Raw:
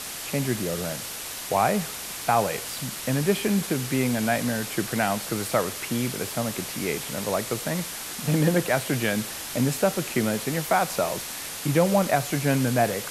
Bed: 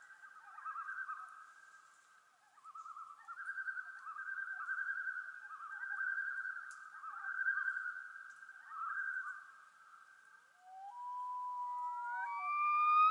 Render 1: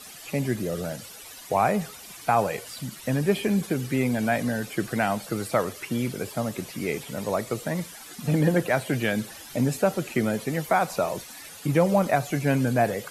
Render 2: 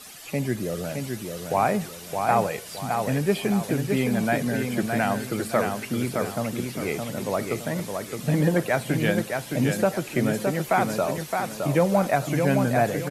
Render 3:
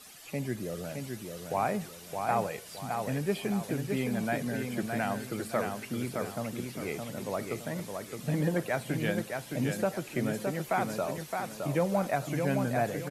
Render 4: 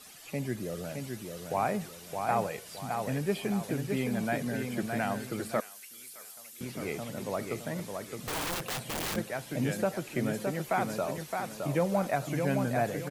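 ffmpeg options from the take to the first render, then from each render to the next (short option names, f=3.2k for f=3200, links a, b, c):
-af "afftdn=nr=13:nf=-35"
-af "aecho=1:1:616|1232|1848|2464:0.562|0.197|0.0689|0.0241"
-af "volume=-7.5dB"
-filter_complex "[0:a]asettb=1/sr,asplit=3[a][b][c];[a]atrim=end=5.604[d];[b]atrim=start=5.6:end=6.61,asetpts=PTS-STARTPTS,afade=t=in:d=0.004:c=qsin,afade=t=out:st=1.006:d=0.004:c=qsin,aderivative[e];[c]atrim=start=6.606[f];[d][e]acrossfade=d=0.004:c1=hsin:c2=qsin[g];[g][f]acrossfade=d=0.004:c1=qsin:c2=hsin,asettb=1/sr,asplit=3[h][i][j];[h]atrim=end=8.184[k];[i]atrim=start=8.18:end=9.16,asetpts=PTS-STARTPTS,afade=t=in:d=0.004:c=qsin,afade=t=out:st=0.976:d=0.004:c=qsin,aeval=exprs='(mod(28.2*val(0)+1,2)-1)/28.2':c=same[l];[j]atrim=start=9.156[m];[k][l]acrossfade=d=0.004:c1=hsin:c2=qsin[n];[n][m]acrossfade=d=0.004:c1=qsin:c2=hsin"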